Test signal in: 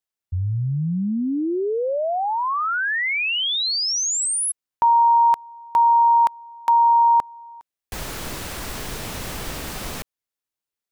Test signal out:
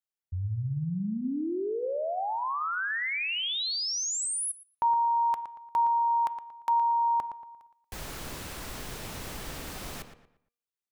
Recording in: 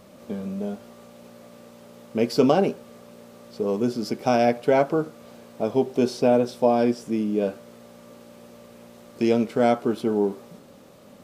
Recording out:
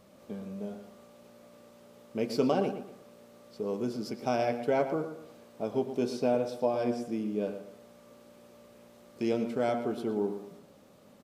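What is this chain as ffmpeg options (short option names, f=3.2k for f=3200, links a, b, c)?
-filter_complex "[0:a]bandreject=f=237.9:t=h:w=4,bandreject=f=475.8:t=h:w=4,bandreject=f=713.7:t=h:w=4,bandreject=f=951.6:t=h:w=4,bandreject=f=1.1895k:t=h:w=4,bandreject=f=1.4274k:t=h:w=4,bandreject=f=1.6653k:t=h:w=4,bandreject=f=1.9032k:t=h:w=4,bandreject=f=2.1411k:t=h:w=4,bandreject=f=2.379k:t=h:w=4,bandreject=f=2.6169k:t=h:w=4,bandreject=f=2.8548k:t=h:w=4,bandreject=f=3.0927k:t=h:w=4,bandreject=f=3.3306k:t=h:w=4,bandreject=f=3.5685k:t=h:w=4,asplit=2[a][b];[b]adelay=116,lowpass=f=3.2k:p=1,volume=-9.5dB,asplit=2[c][d];[d]adelay=116,lowpass=f=3.2k:p=1,volume=0.34,asplit=2[e][f];[f]adelay=116,lowpass=f=3.2k:p=1,volume=0.34,asplit=2[g][h];[h]adelay=116,lowpass=f=3.2k:p=1,volume=0.34[i];[c][e][g][i]amix=inputs=4:normalize=0[j];[a][j]amix=inputs=2:normalize=0,volume=-8.5dB"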